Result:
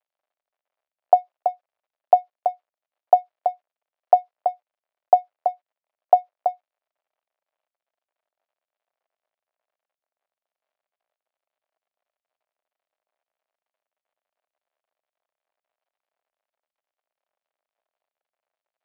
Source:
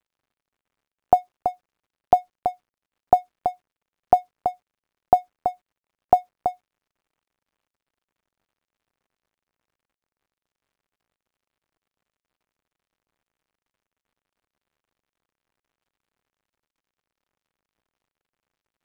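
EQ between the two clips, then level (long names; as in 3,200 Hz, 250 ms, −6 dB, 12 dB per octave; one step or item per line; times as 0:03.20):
high-pass with resonance 630 Hz, resonance Q 4
high-frequency loss of the air 250 metres
high-shelf EQ 2,900 Hz +9 dB
−7.5 dB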